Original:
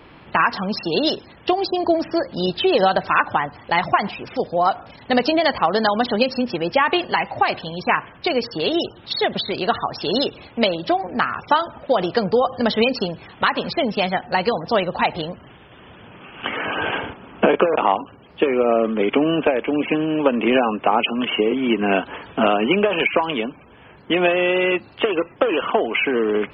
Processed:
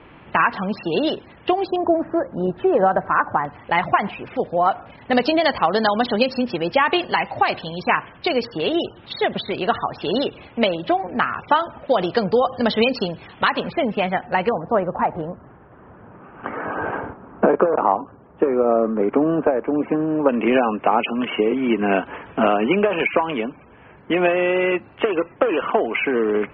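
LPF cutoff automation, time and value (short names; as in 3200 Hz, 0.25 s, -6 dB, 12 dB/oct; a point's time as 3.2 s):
LPF 24 dB/oct
3100 Hz
from 1.76 s 1600 Hz
from 3.45 s 2900 Hz
from 5.13 s 4800 Hz
from 8.45 s 3300 Hz
from 11.88 s 4800 Hz
from 13.6 s 2700 Hz
from 14.49 s 1500 Hz
from 20.29 s 2500 Hz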